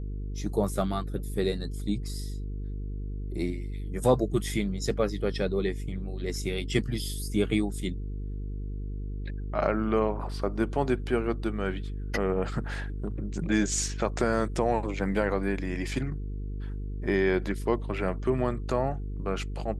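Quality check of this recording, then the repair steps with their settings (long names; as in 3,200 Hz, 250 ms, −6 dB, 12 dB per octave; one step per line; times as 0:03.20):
mains buzz 50 Hz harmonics 9 −34 dBFS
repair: hum removal 50 Hz, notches 9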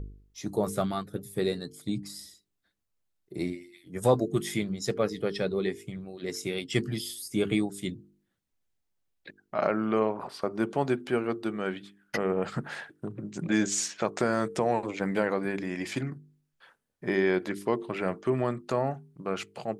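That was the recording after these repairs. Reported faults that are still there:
none of them is left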